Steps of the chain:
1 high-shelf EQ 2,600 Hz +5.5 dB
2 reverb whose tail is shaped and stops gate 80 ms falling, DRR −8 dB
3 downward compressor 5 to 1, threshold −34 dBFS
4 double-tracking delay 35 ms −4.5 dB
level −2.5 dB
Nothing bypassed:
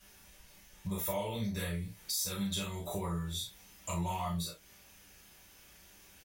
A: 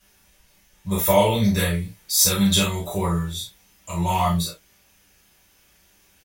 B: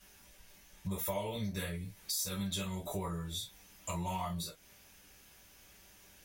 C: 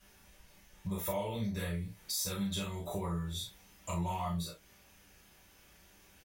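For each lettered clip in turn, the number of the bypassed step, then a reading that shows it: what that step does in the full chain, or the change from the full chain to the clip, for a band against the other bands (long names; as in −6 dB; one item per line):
3, average gain reduction 13.0 dB
4, change in crest factor +2.5 dB
1, 8 kHz band −2.0 dB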